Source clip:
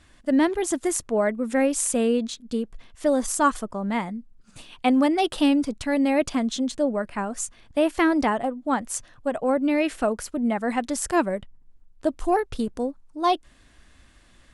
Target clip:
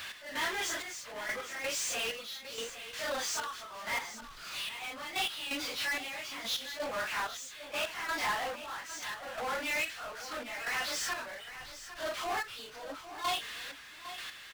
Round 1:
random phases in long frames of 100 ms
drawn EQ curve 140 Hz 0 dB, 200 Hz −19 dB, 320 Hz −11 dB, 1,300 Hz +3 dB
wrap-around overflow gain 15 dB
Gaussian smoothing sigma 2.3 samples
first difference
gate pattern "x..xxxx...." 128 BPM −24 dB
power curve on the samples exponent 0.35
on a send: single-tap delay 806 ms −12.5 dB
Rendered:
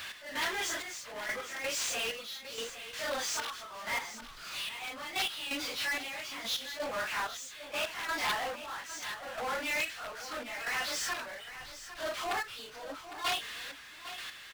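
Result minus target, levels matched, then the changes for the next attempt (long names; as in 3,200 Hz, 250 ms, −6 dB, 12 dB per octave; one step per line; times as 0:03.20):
wrap-around overflow: distortion +14 dB
change: wrap-around overflow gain 9 dB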